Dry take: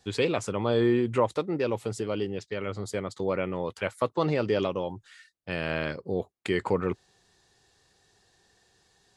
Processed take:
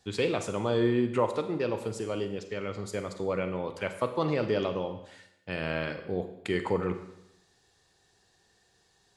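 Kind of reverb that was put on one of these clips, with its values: Schroeder reverb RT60 0.83 s, combs from 33 ms, DRR 8 dB; gain -2.5 dB

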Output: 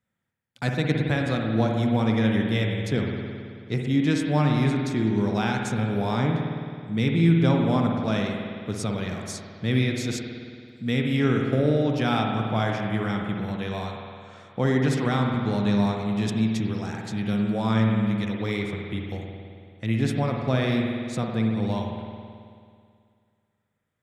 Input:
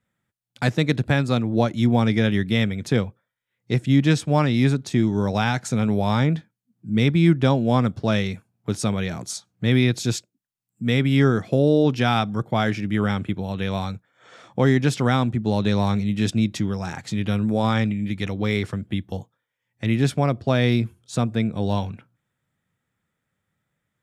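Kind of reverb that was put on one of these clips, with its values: spring tank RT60 2.2 s, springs 54 ms, chirp 50 ms, DRR 1 dB; gain -5.5 dB

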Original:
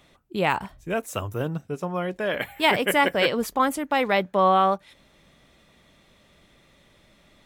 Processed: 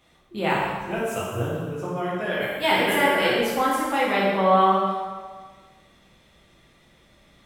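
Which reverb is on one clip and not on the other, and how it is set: plate-style reverb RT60 1.5 s, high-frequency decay 0.8×, DRR -7 dB; gain -6.5 dB

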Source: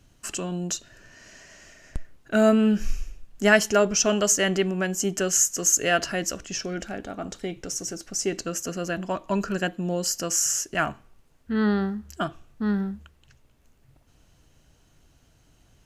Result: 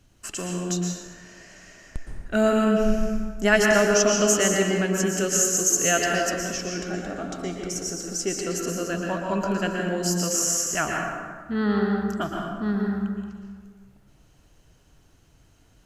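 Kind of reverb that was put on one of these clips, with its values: plate-style reverb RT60 1.7 s, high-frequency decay 0.5×, pre-delay 0.105 s, DRR -0.5 dB; gain -1.5 dB

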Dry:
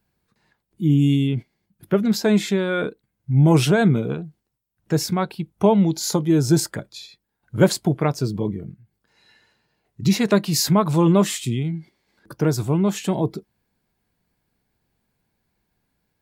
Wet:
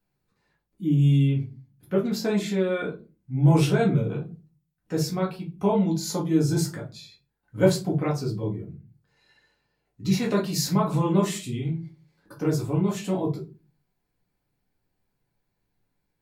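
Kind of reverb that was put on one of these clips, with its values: shoebox room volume 120 m³, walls furnished, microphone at 2 m; gain -10.5 dB

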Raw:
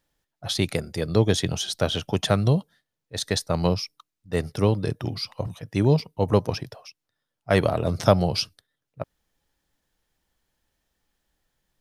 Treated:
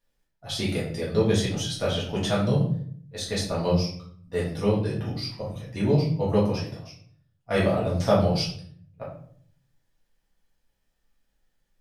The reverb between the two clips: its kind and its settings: shoebox room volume 77 m³, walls mixed, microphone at 1.8 m; gain -10.5 dB

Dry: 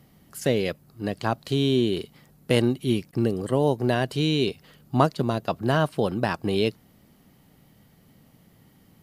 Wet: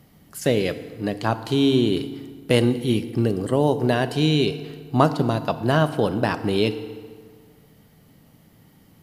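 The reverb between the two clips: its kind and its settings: FDN reverb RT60 1.8 s, low-frequency decay 1×, high-frequency decay 0.7×, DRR 10.5 dB; gain +2.5 dB

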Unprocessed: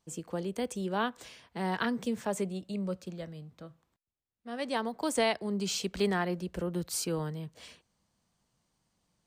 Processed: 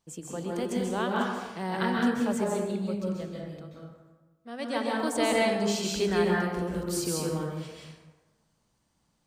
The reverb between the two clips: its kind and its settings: plate-style reverb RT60 1.2 s, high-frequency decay 0.55×, pre-delay 0.12 s, DRR -3 dB; gain -1 dB

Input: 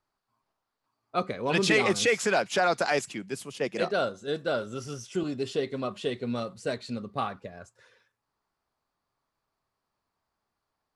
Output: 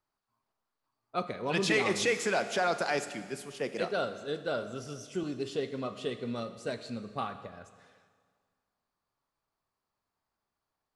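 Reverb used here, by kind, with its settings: Schroeder reverb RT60 1.8 s, combs from 27 ms, DRR 10.5 dB; gain -4.5 dB

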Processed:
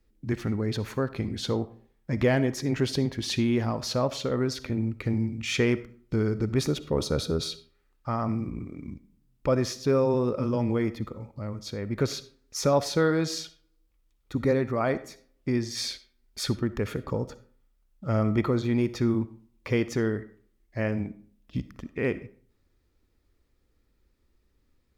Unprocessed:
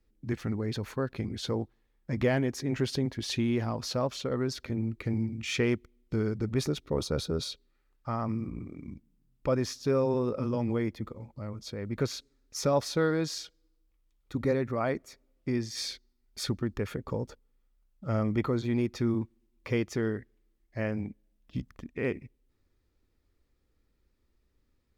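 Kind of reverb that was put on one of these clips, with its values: digital reverb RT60 0.49 s, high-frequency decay 0.65×, pre-delay 20 ms, DRR 14.5 dB; gain +3.5 dB

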